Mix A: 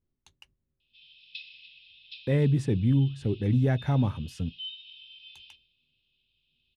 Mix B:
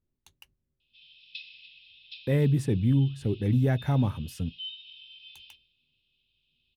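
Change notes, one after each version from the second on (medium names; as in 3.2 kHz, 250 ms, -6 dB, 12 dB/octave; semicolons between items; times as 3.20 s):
master: remove low-pass 7.6 kHz 12 dB/octave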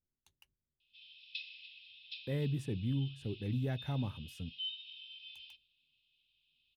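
speech -11.5 dB; background: send -10.5 dB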